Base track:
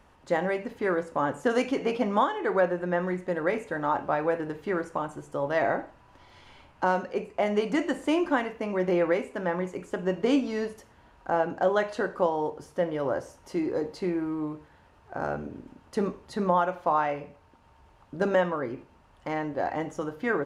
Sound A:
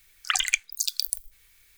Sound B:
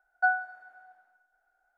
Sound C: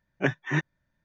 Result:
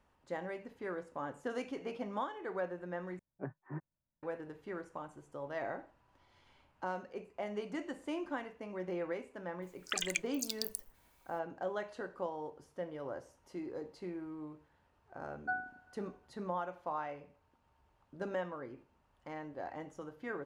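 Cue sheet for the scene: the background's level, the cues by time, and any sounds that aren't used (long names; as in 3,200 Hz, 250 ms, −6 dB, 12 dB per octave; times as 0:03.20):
base track −14 dB
0:03.19: overwrite with C −15.5 dB + low-pass filter 1,200 Hz 24 dB per octave
0:09.62: mix in A −12 dB
0:15.25: mix in B −12 dB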